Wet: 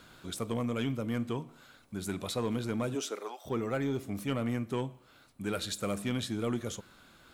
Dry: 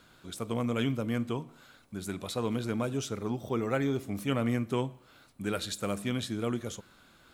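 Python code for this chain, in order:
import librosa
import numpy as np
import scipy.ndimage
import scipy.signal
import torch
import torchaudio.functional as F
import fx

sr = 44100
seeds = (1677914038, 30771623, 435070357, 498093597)

y = fx.rider(x, sr, range_db=4, speed_s=0.5)
y = fx.highpass(y, sr, hz=fx.line((2.94, 200.0), (3.45, 770.0)), slope=24, at=(2.94, 3.45), fade=0.02)
y = 10.0 ** (-21.0 / 20.0) * np.tanh(y / 10.0 ** (-21.0 / 20.0))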